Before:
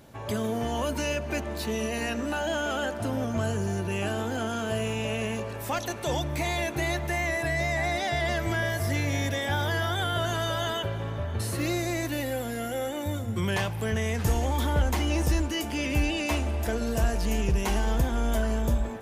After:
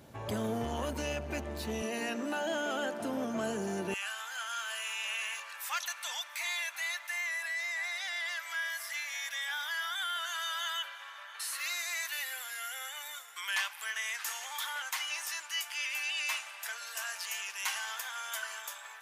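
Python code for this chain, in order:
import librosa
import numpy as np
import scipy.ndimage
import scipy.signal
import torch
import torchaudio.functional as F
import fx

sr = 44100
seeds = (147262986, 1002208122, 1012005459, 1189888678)

y = fx.highpass(x, sr, hz=fx.steps((0.0, 51.0), (1.82, 190.0), (3.94, 1200.0)), slope=24)
y = fx.rider(y, sr, range_db=3, speed_s=2.0)
y = fx.transformer_sat(y, sr, knee_hz=550.0)
y = F.gain(torch.from_numpy(y), -2.0).numpy()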